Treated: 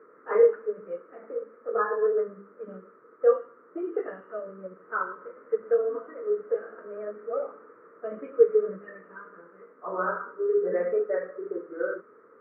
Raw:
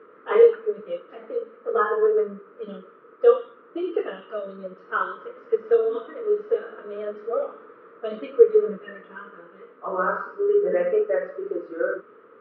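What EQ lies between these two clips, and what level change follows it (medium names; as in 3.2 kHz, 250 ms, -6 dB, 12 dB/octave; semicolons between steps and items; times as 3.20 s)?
steep low-pass 2.1 kHz 48 dB/octave; hum notches 50/100/150/200 Hz; -4.5 dB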